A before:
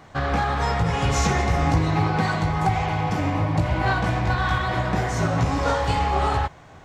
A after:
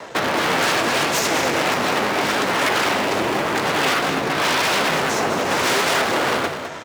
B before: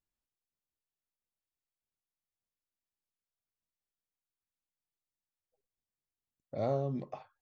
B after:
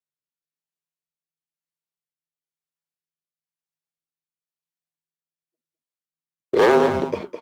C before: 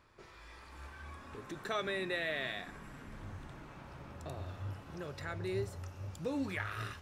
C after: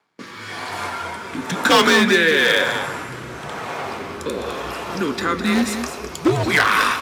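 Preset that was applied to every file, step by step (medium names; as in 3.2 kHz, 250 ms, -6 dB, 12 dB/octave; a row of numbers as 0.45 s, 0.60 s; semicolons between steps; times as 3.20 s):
waveshaping leveller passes 1; in parallel at -11 dB: Schmitt trigger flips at -21 dBFS; on the sum: rotary cabinet horn 1 Hz; gate with hold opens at -51 dBFS; compression 5:1, threshold -25 dBFS; wavefolder -30 dBFS; on a send: delay 207 ms -9 dB; on the sum: frequency shift -160 Hz; high-pass 270 Hz 12 dB/octave; flange 0.83 Hz, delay 4.5 ms, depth 7.4 ms, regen +79%; normalise loudness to -19 LUFS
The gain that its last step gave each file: +21.5 dB, +26.5 dB, +28.5 dB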